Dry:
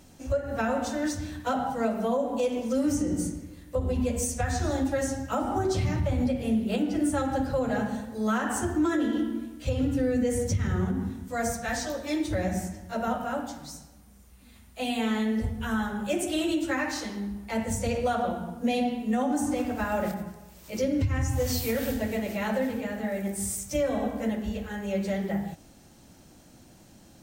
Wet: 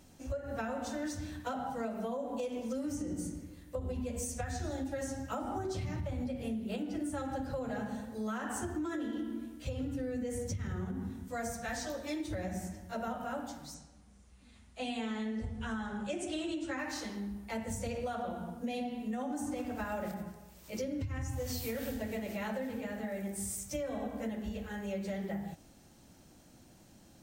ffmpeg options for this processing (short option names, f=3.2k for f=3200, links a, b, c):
-filter_complex "[0:a]asettb=1/sr,asplit=3[a][b][c];[a]atrim=end=4.484[d];[b]atrim=start=4.48:end=5.01,asetpts=PTS-STARTPTS,afade=t=in:d=0.004:c=qsin,afade=t=out:st=0.526:d=0.004:c=qsin,equalizer=f=1.1k:t=o:w=0.42:g=-7[e];[c]atrim=start=5.006[f];[d][e]acrossfade=d=0.004:c1=hsin:c2=qsin[g];[g][f]acrossfade=d=0.004:c1=qsin:c2=hsin,asettb=1/sr,asplit=3[h][i][j];[h]atrim=end=13.744[k];[i]atrim=start=13.74:end=16.79,asetpts=PTS-STARTPTS,afade=t=in:d=0.004:c=qsin,afade=t=out:st=3.046:d=0.004:c=qsin,lowpass=f=8.7k:w=0.5412,lowpass=f=8.7k:w=1.3066[l];[j]atrim=start=16.786[m];[k][l]acrossfade=d=0.004:c1=hsin:c2=qsin[n];[n][m]acrossfade=d=0.004:c1=qsin:c2=hsin,acompressor=threshold=-28dB:ratio=6,volume=-5.5dB"